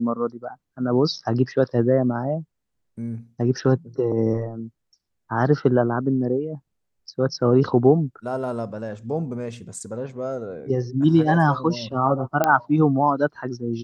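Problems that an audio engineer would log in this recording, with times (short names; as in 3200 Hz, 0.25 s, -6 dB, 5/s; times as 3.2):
12.44 pop -6 dBFS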